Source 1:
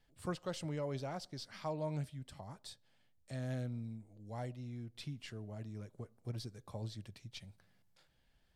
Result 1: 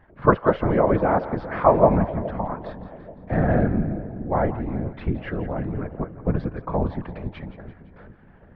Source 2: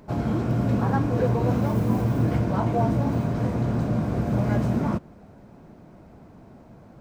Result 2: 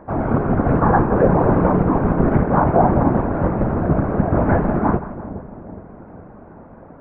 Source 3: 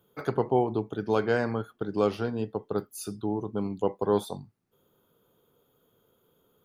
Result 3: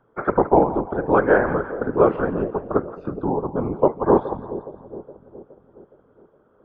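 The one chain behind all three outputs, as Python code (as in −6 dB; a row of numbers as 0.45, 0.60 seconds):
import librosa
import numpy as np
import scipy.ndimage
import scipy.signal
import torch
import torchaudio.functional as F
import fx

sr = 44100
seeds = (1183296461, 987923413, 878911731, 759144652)

p1 = scipy.signal.sosfilt(scipy.signal.butter(4, 1600.0, 'lowpass', fs=sr, output='sos'), x)
p2 = fx.low_shelf(p1, sr, hz=410.0, db=-9.0)
p3 = fx.level_steps(p2, sr, step_db=10)
p4 = p2 + (p3 * 10.0 ** (1.0 / 20.0))
p5 = fx.whisperise(p4, sr, seeds[0])
p6 = fx.echo_split(p5, sr, split_hz=650.0, low_ms=417, high_ms=170, feedback_pct=52, wet_db=-13.5)
y = librosa.util.normalize(p6) * 10.0 ** (-1.5 / 20.0)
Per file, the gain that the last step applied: +22.0, +8.0, +8.0 decibels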